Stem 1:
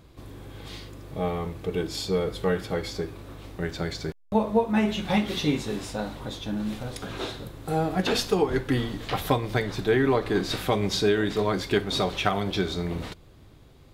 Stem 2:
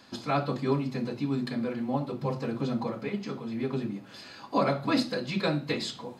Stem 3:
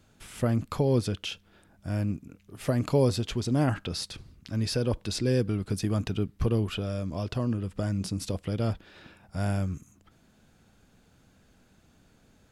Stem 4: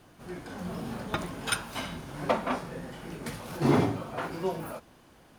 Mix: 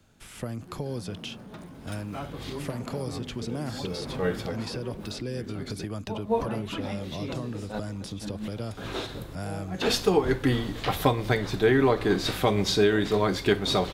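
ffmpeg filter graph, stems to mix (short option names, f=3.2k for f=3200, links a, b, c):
-filter_complex "[0:a]adelay=1750,volume=1dB[a];[1:a]afwtdn=0.0251,adelay=1850,volume=-10.5dB[b];[2:a]acrossover=split=110|400|4200[c][d][e][f];[c]acompressor=threshold=-44dB:ratio=4[g];[d]acompressor=threshold=-37dB:ratio=4[h];[e]acompressor=threshold=-38dB:ratio=4[i];[f]acompressor=threshold=-46dB:ratio=4[j];[g][h][i][j]amix=inputs=4:normalize=0,volume=0dB,asplit=2[k][l];[3:a]equalizer=f=180:t=o:w=2.8:g=8,asoftclip=type=tanh:threshold=-25.5dB,adelay=400,volume=-11.5dB[m];[l]apad=whole_len=691563[n];[a][n]sidechaincompress=threshold=-49dB:ratio=5:attack=16:release=108[o];[o][b][k][m]amix=inputs=4:normalize=0"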